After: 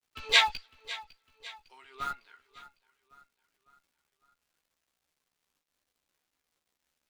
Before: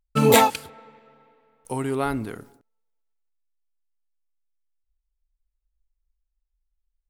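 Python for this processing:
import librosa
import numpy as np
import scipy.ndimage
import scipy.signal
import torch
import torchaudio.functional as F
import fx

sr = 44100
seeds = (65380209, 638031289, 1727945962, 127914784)

p1 = scipy.signal.sosfilt(scipy.signal.butter(2, 1300.0, 'highpass', fs=sr, output='sos'), x)
p2 = fx.noise_reduce_blind(p1, sr, reduce_db=15)
p3 = scipy.signal.sosfilt(scipy.signal.butter(4, 4500.0, 'lowpass', fs=sr, output='sos'), p2)
p4 = fx.high_shelf(p3, sr, hz=2500.0, db=11.5)
p5 = fx.dmg_crackle(p4, sr, seeds[0], per_s=270.0, level_db=-60.0)
p6 = fx.schmitt(p5, sr, flips_db=-33.0)
p7 = p5 + (p6 * 10.0 ** (-6.5 / 20.0))
p8 = fx.chorus_voices(p7, sr, voices=6, hz=0.66, base_ms=14, depth_ms=2.4, mix_pct=40)
y = fx.echo_feedback(p8, sr, ms=554, feedback_pct=49, wet_db=-17.5)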